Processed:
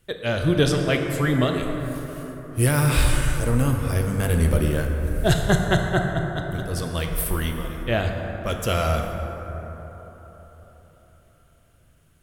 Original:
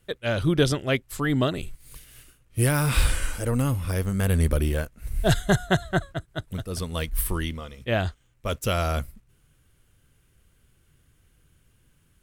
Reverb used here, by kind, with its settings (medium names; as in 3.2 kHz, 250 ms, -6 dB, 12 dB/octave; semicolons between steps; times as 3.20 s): plate-style reverb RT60 4.3 s, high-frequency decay 0.35×, DRR 2.5 dB; trim +1 dB